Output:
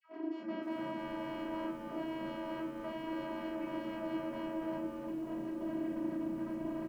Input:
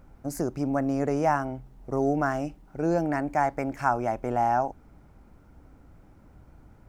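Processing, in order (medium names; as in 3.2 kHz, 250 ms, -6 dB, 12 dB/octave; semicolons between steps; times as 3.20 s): peak limiter -22 dBFS, peak gain reduction 11 dB; compression 3:1, threshold -46 dBFS, peak gain reduction 14.5 dB; static phaser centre 320 Hz, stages 4; phase dispersion lows, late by 102 ms, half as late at 950 Hz; integer overflow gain 49 dB; vocoder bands 16, saw 322 Hz; Butterworth band-stop 3.7 kHz, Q 5.5; distance through air 420 m; on a send: frequency-shifting echo 289 ms, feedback 33%, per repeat -91 Hz, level -8 dB; on the sum: simulated room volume 32 m³, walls mixed, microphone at 1.2 m; bit-crushed delay 519 ms, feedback 55%, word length 11-bit, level -13 dB; trim +10.5 dB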